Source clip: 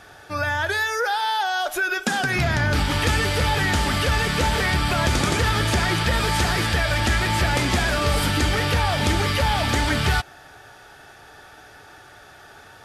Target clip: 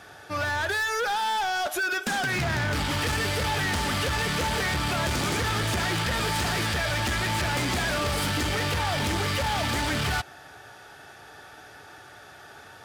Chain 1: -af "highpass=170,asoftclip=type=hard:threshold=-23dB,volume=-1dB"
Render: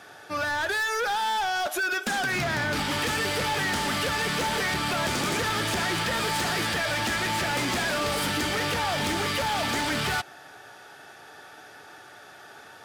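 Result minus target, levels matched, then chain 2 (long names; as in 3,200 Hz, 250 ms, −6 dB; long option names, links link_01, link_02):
125 Hz band −5.5 dB
-af "highpass=74,asoftclip=type=hard:threshold=-23dB,volume=-1dB"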